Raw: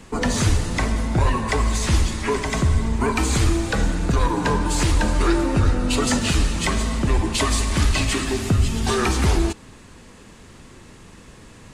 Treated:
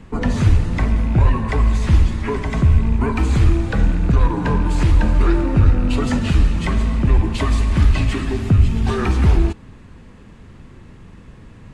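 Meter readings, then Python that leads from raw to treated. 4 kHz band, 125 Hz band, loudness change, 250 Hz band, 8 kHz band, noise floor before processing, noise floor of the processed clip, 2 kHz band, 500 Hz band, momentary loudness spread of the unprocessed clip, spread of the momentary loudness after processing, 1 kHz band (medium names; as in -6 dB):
-7.0 dB, +5.5 dB, +3.5 dB, +2.0 dB, -13.0 dB, -45 dBFS, -42 dBFS, -2.5 dB, -1.0 dB, 3 LU, 4 LU, -2.0 dB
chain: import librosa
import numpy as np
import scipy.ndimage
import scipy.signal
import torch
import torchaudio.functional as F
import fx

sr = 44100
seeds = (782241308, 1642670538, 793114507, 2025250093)

y = fx.rattle_buzz(x, sr, strikes_db=-20.0, level_db=-26.0)
y = fx.bass_treble(y, sr, bass_db=8, treble_db=-12)
y = F.gain(torch.from_numpy(y), -2.0).numpy()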